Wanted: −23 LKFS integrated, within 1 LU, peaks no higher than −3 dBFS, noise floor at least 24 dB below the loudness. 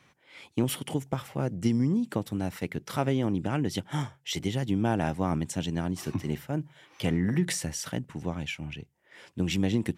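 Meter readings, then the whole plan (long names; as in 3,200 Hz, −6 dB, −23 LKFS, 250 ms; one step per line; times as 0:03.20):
integrated loudness −30.5 LKFS; sample peak −12.0 dBFS; target loudness −23.0 LKFS
→ level +7.5 dB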